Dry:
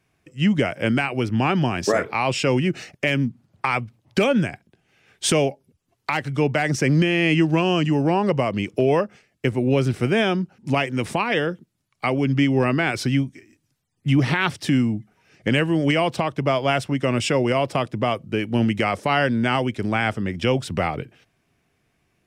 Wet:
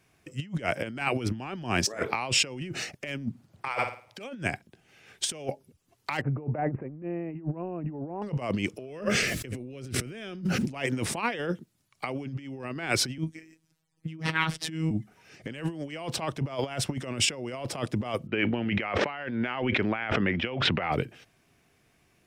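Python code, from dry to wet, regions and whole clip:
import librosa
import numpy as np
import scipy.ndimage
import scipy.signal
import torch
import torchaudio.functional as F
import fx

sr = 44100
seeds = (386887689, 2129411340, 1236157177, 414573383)

y = fx.chain(x, sr, fx.low_shelf_res(hz=370.0, db=-10.5, q=1.5),
    fx.room_flutter(wall_m=9.2, rt60_s=0.41), at=(3.68, 4.18))
y = fx.chain(y, sr, fx.cheby1_lowpass(hz=730.0, order=2),
    fx.resample_bad(factor=8, down='none', up='filtered'), at=(6.21, 8.22))
y = fx.chain(y, sr, fx.peak_eq(hz=860.0, db=-12.5, octaves=0.58),
    fx.echo_single(ms=73, db=-23.0),
    fx.env_flatten(amount_pct=70), at=(8.89, 10.72))
y = fx.chain(y, sr, fx.high_shelf(hz=4300.0, db=-6.0),
    fx.robotise(hz=160.0), at=(13.18, 14.91))
y = fx.chain(y, sr, fx.lowpass(hz=2600.0, slope=24),
    fx.tilt_eq(slope=2.5),
    fx.sustainer(db_per_s=35.0), at=(18.27, 20.92))
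y = fx.over_compress(y, sr, threshold_db=-26.0, ratio=-0.5)
y = fx.bass_treble(y, sr, bass_db=-2, treble_db=3)
y = y * 10.0 ** (-3.0 / 20.0)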